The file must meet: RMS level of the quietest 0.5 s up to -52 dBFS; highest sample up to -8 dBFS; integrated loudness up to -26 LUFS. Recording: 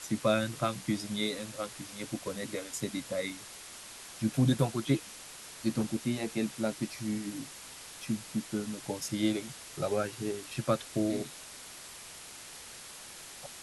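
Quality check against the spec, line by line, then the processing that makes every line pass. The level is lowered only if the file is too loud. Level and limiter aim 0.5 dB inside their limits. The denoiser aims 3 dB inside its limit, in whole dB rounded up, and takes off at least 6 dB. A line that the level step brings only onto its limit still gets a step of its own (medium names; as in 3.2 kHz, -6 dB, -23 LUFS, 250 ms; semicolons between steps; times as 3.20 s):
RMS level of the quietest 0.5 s -48 dBFS: fail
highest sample -14.5 dBFS: pass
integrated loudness -34.0 LUFS: pass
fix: noise reduction 7 dB, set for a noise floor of -48 dBFS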